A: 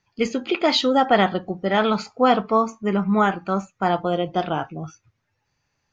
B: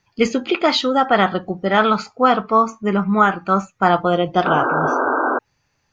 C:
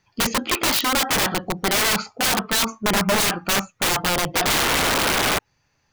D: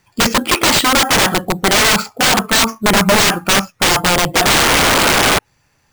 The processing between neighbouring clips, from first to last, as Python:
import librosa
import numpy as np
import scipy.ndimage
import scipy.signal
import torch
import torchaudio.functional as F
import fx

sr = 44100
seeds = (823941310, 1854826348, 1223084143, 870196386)

y1 = fx.dynamic_eq(x, sr, hz=1300.0, q=2.2, threshold_db=-36.0, ratio=4.0, max_db=7)
y1 = fx.spec_paint(y1, sr, seeds[0], shape='noise', start_s=4.45, length_s=0.94, low_hz=240.0, high_hz=1600.0, level_db=-24.0)
y1 = fx.rider(y1, sr, range_db=3, speed_s=0.5)
y1 = F.gain(torch.from_numpy(y1), 2.5).numpy()
y2 = (np.mod(10.0 ** (14.5 / 20.0) * y1 + 1.0, 2.0) - 1.0) / 10.0 ** (14.5 / 20.0)
y3 = fx.sample_hold(y2, sr, seeds[1], rate_hz=12000.0, jitter_pct=0)
y3 = F.gain(torch.from_numpy(y3), 8.0).numpy()